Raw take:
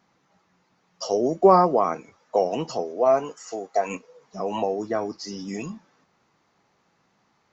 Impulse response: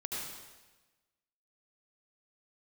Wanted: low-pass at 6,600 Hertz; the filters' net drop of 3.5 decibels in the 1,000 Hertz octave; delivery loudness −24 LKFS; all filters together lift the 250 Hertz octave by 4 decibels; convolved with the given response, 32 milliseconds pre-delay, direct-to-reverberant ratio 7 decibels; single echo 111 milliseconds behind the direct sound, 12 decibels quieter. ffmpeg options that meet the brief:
-filter_complex "[0:a]lowpass=6600,equalizer=frequency=250:width_type=o:gain=6.5,equalizer=frequency=1000:width_type=o:gain=-5.5,aecho=1:1:111:0.251,asplit=2[link_01][link_02];[1:a]atrim=start_sample=2205,adelay=32[link_03];[link_02][link_03]afir=irnorm=-1:irlink=0,volume=-9.5dB[link_04];[link_01][link_04]amix=inputs=2:normalize=0,volume=-1dB"

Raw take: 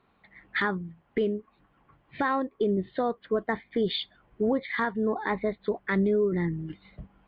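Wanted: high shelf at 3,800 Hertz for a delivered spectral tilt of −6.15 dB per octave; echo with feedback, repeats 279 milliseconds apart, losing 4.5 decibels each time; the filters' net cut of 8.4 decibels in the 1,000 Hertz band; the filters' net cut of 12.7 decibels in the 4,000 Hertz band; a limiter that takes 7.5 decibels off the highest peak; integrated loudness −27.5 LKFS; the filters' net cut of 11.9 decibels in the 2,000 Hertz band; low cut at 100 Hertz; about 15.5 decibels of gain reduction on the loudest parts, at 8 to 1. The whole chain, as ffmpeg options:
ffmpeg -i in.wav -af "highpass=100,equalizer=frequency=1000:width_type=o:gain=-8,equalizer=frequency=2000:width_type=o:gain=-8.5,highshelf=frequency=3800:gain=-8,equalizer=frequency=4000:width_type=o:gain=-7.5,acompressor=threshold=-39dB:ratio=8,alimiter=level_in=11.5dB:limit=-24dB:level=0:latency=1,volume=-11.5dB,aecho=1:1:279|558|837|1116|1395|1674|1953|2232|2511:0.596|0.357|0.214|0.129|0.0772|0.0463|0.0278|0.0167|0.01,volume=17dB" out.wav

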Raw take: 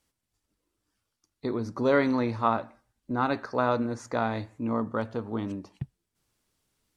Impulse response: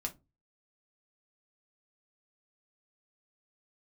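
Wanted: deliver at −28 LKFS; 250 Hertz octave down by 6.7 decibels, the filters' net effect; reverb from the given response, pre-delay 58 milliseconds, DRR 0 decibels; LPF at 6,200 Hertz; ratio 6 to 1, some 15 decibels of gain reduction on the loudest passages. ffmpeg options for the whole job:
-filter_complex "[0:a]lowpass=6200,equalizer=frequency=250:width_type=o:gain=-7.5,acompressor=threshold=-36dB:ratio=6,asplit=2[link_01][link_02];[1:a]atrim=start_sample=2205,adelay=58[link_03];[link_02][link_03]afir=irnorm=-1:irlink=0,volume=-0.5dB[link_04];[link_01][link_04]amix=inputs=2:normalize=0,volume=10.5dB"

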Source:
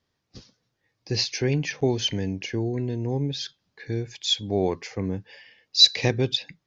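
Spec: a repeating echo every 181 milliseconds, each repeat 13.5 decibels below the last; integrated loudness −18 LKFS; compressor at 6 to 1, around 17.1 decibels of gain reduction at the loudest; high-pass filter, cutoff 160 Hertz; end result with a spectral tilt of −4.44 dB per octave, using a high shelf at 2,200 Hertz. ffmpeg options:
ffmpeg -i in.wav -af "highpass=160,highshelf=frequency=2200:gain=-7.5,acompressor=threshold=-35dB:ratio=6,aecho=1:1:181|362:0.211|0.0444,volume=21dB" out.wav

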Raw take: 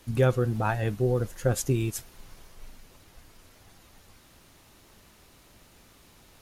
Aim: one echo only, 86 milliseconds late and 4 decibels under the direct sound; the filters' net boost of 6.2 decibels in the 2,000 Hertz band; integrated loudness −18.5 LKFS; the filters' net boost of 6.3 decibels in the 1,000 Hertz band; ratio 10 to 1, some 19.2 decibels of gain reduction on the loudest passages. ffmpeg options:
ffmpeg -i in.wav -af "equalizer=frequency=1000:width_type=o:gain=7,equalizer=frequency=2000:width_type=o:gain=5.5,acompressor=threshold=-36dB:ratio=10,aecho=1:1:86:0.631,volume=25dB" out.wav

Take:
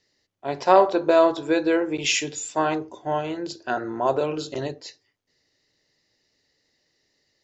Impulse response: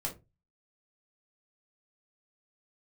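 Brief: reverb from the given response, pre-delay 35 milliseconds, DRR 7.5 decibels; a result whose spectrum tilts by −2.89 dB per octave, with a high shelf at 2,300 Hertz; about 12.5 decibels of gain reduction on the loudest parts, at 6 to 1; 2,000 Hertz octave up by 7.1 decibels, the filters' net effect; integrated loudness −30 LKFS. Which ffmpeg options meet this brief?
-filter_complex "[0:a]equalizer=frequency=2000:width_type=o:gain=5,highshelf=frequency=2300:gain=8,acompressor=threshold=-23dB:ratio=6,asplit=2[link_01][link_02];[1:a]atrim=start_sample=2205,adelay=35[link_03];[link_02][link_03]afir=irnorm=-1:irlink=0,volume=-9dB[link_04];[link_01][link_04]amix=inputs=2:normalize=0,volume=-2.5dB"

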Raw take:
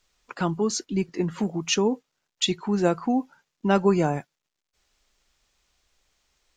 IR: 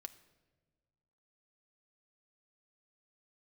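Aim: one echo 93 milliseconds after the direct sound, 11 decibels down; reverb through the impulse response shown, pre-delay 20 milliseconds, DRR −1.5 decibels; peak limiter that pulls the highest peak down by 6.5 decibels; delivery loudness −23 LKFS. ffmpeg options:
-filter_complex "[0:a]alimiter=limit=-14dB:level=0:latency=1,aecho=1:1:93:0.282,asplit=2[link_01][link_02];[1:a]atrim=start_sample=2205,adelay=20[link_03];[link_02][link_03]afir=irnorm=-1:irlink=0,volume=6.5dB[link_04];[link_01][link_04]amix=inputs=2:normalize=0,volume=-1dB"

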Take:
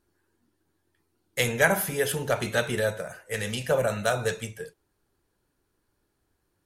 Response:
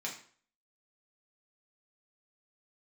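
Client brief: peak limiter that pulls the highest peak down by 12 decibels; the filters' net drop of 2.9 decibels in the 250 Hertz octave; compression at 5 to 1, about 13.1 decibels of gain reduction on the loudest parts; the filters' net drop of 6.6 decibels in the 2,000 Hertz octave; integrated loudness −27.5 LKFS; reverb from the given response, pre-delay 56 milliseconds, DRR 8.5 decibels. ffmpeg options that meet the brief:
-filter_complex "[0:a]equalizer=frequency=250:width_type=o:gain=-4,equalizer=frequency=2000:width_type=o:gain=-9,acompressor=threshold=-35dB:ratio=5,alimiter=level_in=9dB:limit=-24dB:level=0:latency=1,volume=-9dB,asplit=2[link_01][link_02];[1:a]atrim=start_sample=2205,adelay=56[link_03];[link_02][link_03]afir=irnorm=-1:irlink=0,volume=-10.5dB[link_04];[link_01][link_04]amix=inputs=2:normalize=0,volume=15.5dB"

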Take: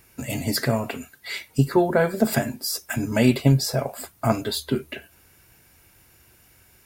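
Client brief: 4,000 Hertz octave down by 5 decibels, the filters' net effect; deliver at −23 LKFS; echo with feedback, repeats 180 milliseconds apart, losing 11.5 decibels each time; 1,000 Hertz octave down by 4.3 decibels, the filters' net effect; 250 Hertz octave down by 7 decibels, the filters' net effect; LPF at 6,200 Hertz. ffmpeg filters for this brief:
ffmpeg -i in.wav -af "lowpass=6200,equalizer=frequency=250:width_type=o:gain=-9,equalizer=frequency=1000:width_type=o:gain=-5.5,equalizer=frequency=4000:width_type=o:gain=-5,aecho=1:1:180|360|540:0.266|0.0718|0.0194,volume=4.5dB" out.wav

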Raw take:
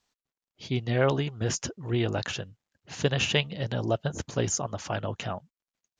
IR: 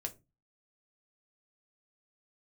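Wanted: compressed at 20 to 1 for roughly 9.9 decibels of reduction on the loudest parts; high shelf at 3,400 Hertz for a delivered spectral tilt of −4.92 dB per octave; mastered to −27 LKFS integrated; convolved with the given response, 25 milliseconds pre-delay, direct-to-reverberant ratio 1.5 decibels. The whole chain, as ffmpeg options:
-filter_complex "[0:a]highshelf=frequency=3400:gain=-4.5,acompressor=threshold=-28dB:ratio=20,asplit=2[link_01][link_02];[1:a]atrim=start_sample=2205,adelay=25[link_03];[link_02][link_03]afir=irnorm=-1:irlink=0,volume=-0.5dB[link_04];[link_01][link_04]amix=inputs=2:normalize=0,volume=5.5dB"

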